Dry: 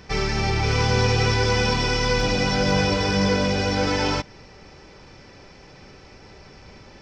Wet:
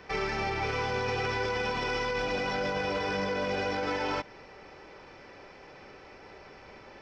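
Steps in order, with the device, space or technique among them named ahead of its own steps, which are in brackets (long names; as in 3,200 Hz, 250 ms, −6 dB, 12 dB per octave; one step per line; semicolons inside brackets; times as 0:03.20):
DJ mixer with the lows and highs turned down (three-way crossover with the lows and the highs turned down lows −12 dB, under 310 Hz, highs −12 dB, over 3,100 Hz; brickwall limiter −22.5 dBFS, peak gain reduction 11 dB)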